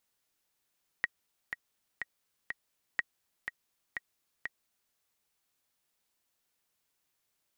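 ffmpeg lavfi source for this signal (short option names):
-f lavfi -i "aevalsrc='pow(10,(-15-7.5*gte(mod(t,4*60/123),60/123))/20)*sin(2*PI*1900*mod(t,60/123))*exp(-6.91*mod(t,60/123)/0.03)':d=3.9:s=44100"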